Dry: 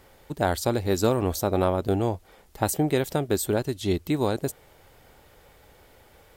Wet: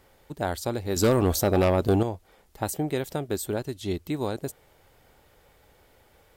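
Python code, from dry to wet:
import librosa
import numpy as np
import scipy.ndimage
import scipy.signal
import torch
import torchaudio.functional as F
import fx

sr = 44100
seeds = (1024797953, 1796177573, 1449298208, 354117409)

y = fx.fold_sine(x, sr, drive_db=5, ceiling_db=-9.5, at=(0.96, 2.03))
y = F.gain(torch.from_numpy(y), -4.5).numpy()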